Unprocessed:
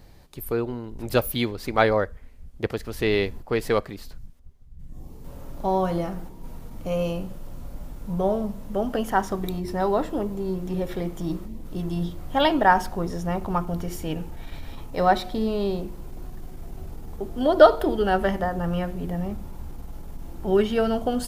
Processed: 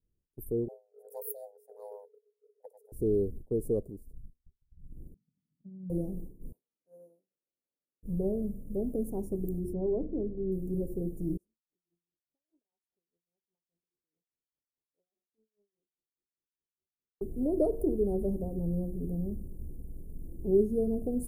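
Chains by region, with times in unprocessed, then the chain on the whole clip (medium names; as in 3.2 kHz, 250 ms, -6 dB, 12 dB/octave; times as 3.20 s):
0.68–2.92 s: frequency shift +400 Hz + static phaser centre 680 Hz, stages 4
5.14–5.90 s: compression 2:1, threshold -28 dBFS + Butterworth band-pass 180 Hz, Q 2.1
6.52–8.03 s: Chebyshev high-pass 1.1 kHz + tilt shelf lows +7 dB, about 1.2 kHz
9.73–10.52 s: low-pass 2.2 kHz 24 dB/octave + hum notches 50/100/150/200/250/300 Hz
11.37–17.21 s: LFO band-pass sine 4.9 Hz 940–5700 Hz + compression 2:1, threshold -45 dBFS
whole clip: Chebyshev band-stop 430–9900 Hz, order 3; peaking EQ 12 kHz -7.5 dB 0.2 oct; expander -33 dBFS; trim -4 dB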